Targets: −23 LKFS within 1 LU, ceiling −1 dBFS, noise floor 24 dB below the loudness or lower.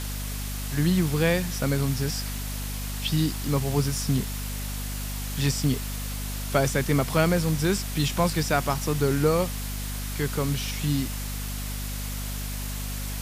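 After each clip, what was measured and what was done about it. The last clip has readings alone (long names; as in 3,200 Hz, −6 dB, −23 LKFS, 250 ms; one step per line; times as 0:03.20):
mains hum 50 Hz; hum harmonics up to 250 Hz; level of the hum −30 dBFS; background noise floor −32 dBFS; target noise floor −51 dBFS; integrated loudness −27.0 LKFS; sample peak −8.5 dBFS; target loudness −23.0 LKFS
→ mains-hum notches 50/100/150/200/250 Hz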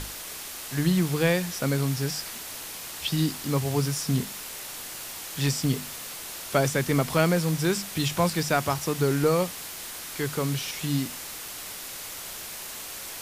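mains hum none found; background noise floor −38 dBFS; target noise floor −52 dBFS
→ broadband denoise 14 dB, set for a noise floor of −38 dBFS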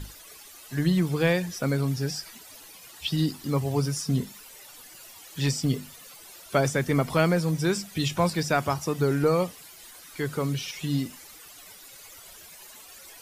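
background noise floor −48 dBFS; target noise floor −51 dBFS
→ broadband denoise 6 dB, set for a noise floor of −48 dBFS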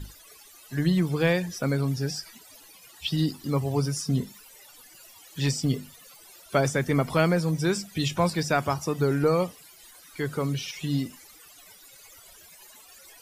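background noise floor −52 dBFS; integrated loudness −27.0 LKFS; sample peak −8.5 dBFS; target loudness −23.0 LKFS
→ level +4 dB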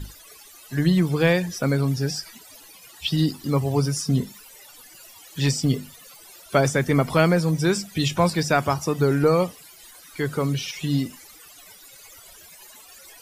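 integrated loudness −23.0 LKFS; sample peak −4.5 dBFS; background noise floor −48 dBFS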